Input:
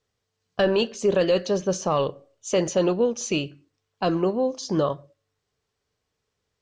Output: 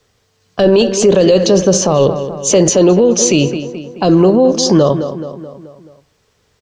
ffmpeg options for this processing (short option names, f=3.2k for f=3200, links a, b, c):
-filter_complex "[0:a]acrossover=split=100|720|3400[a][b][c][d];[c]acompressor=threshold=-39dB:ratio=6[e];[a][b][e][d]amix=inputs=4:normalize=0,asplit=2[f][g];[g]adelay=215,lowpass=f=3.5k:p=1,volume=-15dB,asplit=2[h][i];[i]adelay=215,lowpass=f=3.5k:p=1,volume=0.53,asplit=2[j][k];[k]adelay=215,lowpass=f=3.5k:p=1,volume=0.53,asplit=2[l][m];[m]adelay=215,lowpass=f=3.5k:p=1,volume=0.53,asplit=2[n][o];[o]adelay=215,lowpass=f=3.5k:p=1,volume=0.53[p];[f][h][j][l][n][p]amix=inputs=6:normalize=0,alimiter=level_in=20.5dB:limit=-1dB:release=50:level=0:latency=1,volume=-1dB"